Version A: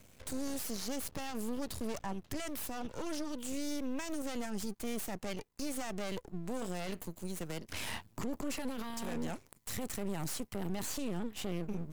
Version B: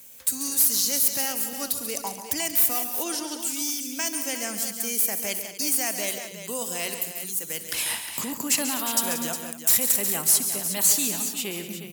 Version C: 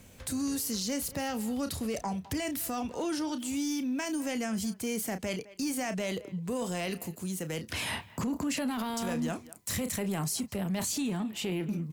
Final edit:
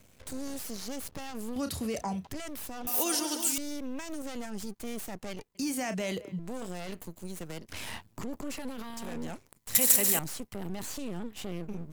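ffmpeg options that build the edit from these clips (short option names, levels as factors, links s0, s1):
-filter_complex "[2:a]asplit=2[s0][s1];[1:a]asplit=2[s2][s3];[0:a]asplit=5[s4][s5][s6][s7][s8];[s4]atrim=end=1.562[s9];[s0]atrim=start=1.558:end=2.272[s10];[s5]atrim=start=2.268:end=2.872[s11];[s2]atrim=start=2.868:end=3.582[s12];[s6]atrim=start=3.578:end=5.552[s13];[s1]atrim=start=5.548:end=6.392[s14];[s7]atrim=start=6.388:end=9.752[s15];[s3]atrim=start=9.748:end=10.192[s16];[s8]atrim=start=10.188[s17];[s9][s10]acrossfade=d=0.004:c1=hsin:c2=hsin[s18];[s18][s11]acrossfade=d=0.004:c1=hsin:c2=hsin[s19];[s19][s12]acrossfade=d=0.004:c1=hsin:c2=hsin[s20];[s20][s13]acrossfade=d=0.004:c1=hsin:c2=hsin[s21];[s21][s14]acrossfade=d=0.004:c1=hsin:c2=hsin[s22];[s22][s15]acrossfade=d=0.004:c1=hsin:c2=hsin[s23];[s23][s16]acrossfade=d=0.004:c1=hsin:c2=hsin[s24];[s24][s17]acrossfade=d=0.004:c1=hsin:c2=hsin"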